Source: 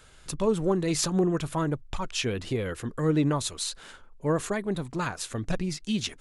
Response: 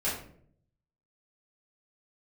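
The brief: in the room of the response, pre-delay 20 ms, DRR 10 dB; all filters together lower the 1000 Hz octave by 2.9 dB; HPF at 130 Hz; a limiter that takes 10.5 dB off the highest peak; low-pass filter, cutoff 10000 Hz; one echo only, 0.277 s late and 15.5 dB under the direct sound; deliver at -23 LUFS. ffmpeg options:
-filter_complex "[0:a]highpass=130,lowpass=10k,equalizer=f=1k:t=o:g=-3.5,alimiter=level_in=1dB:limit=-24dB:level=0:latency=1,volume=-1dB,aecho=1:1:277:0.168,asplit=2[a][b];[1:a]atrim=start_sample=2205,adelay=20[c];[b][c]afir=irnorm=-1:irlink=0,volume=-18dB[d];[a][d]amix=inputs=2:normalize=0,volume=11dB"

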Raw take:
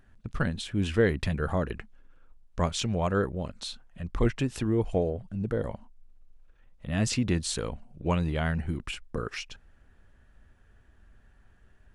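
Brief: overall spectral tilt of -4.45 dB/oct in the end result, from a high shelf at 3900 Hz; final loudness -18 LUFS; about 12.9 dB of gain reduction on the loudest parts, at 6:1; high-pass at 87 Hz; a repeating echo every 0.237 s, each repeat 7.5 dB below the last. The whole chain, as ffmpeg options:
-af "highpass=87,highshelf=f=3.9k:g=5,acompressor=threshold=-32dB:ratio=6,aecho=1:1:237|474|711|948|1185:0.422|0.177|0.0744|0.0312|0.0131,volume=19dB"

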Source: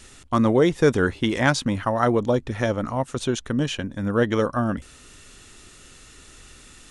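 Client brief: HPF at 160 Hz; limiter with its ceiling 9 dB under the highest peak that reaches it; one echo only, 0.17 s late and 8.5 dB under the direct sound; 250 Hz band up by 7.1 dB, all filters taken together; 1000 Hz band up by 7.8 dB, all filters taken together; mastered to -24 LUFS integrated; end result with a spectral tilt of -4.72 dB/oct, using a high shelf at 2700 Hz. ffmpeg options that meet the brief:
-af "highpass=160,equalizer=f=250:t=o:g=9,equalizer=f=1k:t=o:g=8,highshelf=f=2.7k:g=9,alimiter=limit=-6.5dB:level=0:latency=1,aecho=1:1:170:0.376,volume=-5.5dB"

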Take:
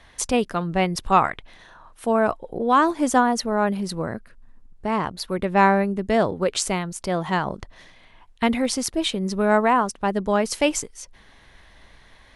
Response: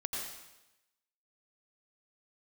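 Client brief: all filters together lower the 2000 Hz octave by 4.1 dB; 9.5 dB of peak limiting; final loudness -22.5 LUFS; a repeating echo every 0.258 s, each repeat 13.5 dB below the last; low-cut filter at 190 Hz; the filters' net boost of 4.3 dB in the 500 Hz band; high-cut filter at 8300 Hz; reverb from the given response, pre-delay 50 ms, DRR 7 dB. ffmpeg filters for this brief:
-filter_complex "[0:a]highpass=190,lowpass=8.3k,equalizer=f=500:t=o:g=6,equalizer=f=2k:t=o:g=-6,alimiter=limit=-11.5dB:level=0:latency=1,aecho=1:1:258|516:0.211|0.0444,asplit=2[a][b];[1:a]atrim=start_sample=2205,adelay=50[c];[b][c]afir=irnorm=-1:irlink=0,volume=-9.5dB[d];[a][d]amix=inputs=2:normalize=0,volume=0.5dB"

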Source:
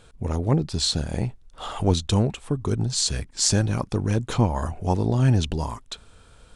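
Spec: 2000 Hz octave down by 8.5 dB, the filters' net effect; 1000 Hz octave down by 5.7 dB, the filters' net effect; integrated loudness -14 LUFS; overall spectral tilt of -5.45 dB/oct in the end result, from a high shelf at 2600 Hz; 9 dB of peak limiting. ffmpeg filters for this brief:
-af "equalizer=f=1k:t=o:g=-5,equalizer=f=2k:t=o:g=-6,highshelf=f=2.6k:g=-8.5,volume=14.5dB,alimiter=limit=-2dB:level=0:latency=1"

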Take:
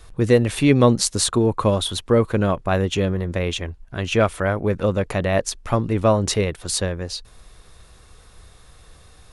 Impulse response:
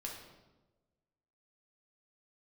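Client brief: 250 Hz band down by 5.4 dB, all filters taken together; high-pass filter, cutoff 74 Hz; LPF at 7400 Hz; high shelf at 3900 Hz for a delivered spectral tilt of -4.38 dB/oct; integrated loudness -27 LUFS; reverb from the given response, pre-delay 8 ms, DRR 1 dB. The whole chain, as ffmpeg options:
-filter_complex "[0:a]highpass=74,lowpass=7.4k,equalizer=f=250:t=o:g=-7,highshelf=f=3.9k:g=6,asplit=2[a][b];[1:a]atrim=start_sample=2205,adelay=8[c];[b][c]afir=irnorm=-1:irlink=0,volume=0.5dB[d];[a][d]amix=inputs=2:normalize=0,volume=-8.5dB"

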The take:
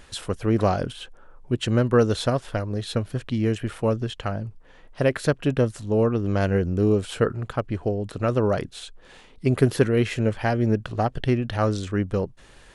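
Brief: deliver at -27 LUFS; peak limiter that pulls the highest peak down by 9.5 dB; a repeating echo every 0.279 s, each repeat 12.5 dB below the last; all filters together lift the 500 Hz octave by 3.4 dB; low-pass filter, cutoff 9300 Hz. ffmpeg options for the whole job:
-af "lowpass=9.3k,equalizer=f=500:t=o:g=4,alimiter=limit=-13dB:level=0:latency=1,aecho=1:1:279|558|837:0.237|0.0569|0.0137,volume=-2.5dB"

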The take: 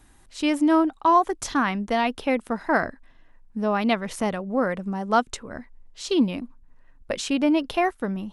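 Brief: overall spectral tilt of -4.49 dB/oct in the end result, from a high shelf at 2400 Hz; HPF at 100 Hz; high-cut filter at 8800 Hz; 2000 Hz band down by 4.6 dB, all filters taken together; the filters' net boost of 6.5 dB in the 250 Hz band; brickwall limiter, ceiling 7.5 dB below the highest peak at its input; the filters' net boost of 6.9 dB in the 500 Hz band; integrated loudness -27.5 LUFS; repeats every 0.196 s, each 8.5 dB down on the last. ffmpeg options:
-af "highpass=100,lowpass=8.8k,equalizer=f=250:t=o:g=5.5,equalizer=f=500:t=o:g=8.5,equalizer=f=2k:t=o:g=-4,highshelf=f=2.4k:g=-6,alimiter=limit=-11.5dB:level=0:latency=1,aecho=1:1:196|392|588|784:0.376|0.143|0.0543|0.0206,volume=-6dB"

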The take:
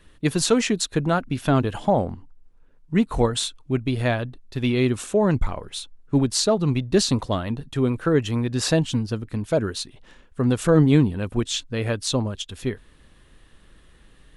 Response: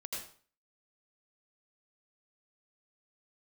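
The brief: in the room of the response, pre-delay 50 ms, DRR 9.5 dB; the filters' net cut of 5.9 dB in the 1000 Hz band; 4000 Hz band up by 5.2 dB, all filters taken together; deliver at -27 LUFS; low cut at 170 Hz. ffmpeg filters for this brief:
-filter_complex "[0:a]highpass=170,equalizer=f=1k:t=o:g=-9,equalizer=f=4k:t=o:g=6.5,asplit=2[a][b];[1:a]atrim=start_sample=2205,adelay=50[c];[b][c]afir=irnorm=-1:irlink=0,volume=-9.5dB[d];[a][d]amix=inputs=2:normalize=0,volume=-3.5dB"

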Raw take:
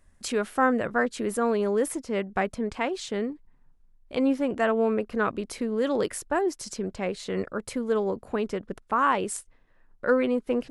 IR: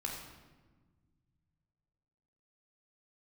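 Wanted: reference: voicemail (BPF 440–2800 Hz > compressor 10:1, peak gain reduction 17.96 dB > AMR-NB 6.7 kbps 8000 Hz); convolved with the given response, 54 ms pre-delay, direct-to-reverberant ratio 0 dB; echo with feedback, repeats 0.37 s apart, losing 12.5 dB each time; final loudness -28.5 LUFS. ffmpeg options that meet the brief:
-filter_complex "[0:a]aecho=1:1:370|740|1110:0.237|0.0569|0.0137,asplit=2[a][b];[1:a]atrim=start_sample=2205,adelay=54[c];[b][c]afir=irnorm=-1:irlink=0,volume=-1dB[d];[a][d]amix=inputs=2:normalize=0,highpass=440,lowpass=2.8k,acompressor=threshold=-33dB:ratio=10,volume=10dB" -ar 8000 -c:a libopencore_amrnb -b:a 6700

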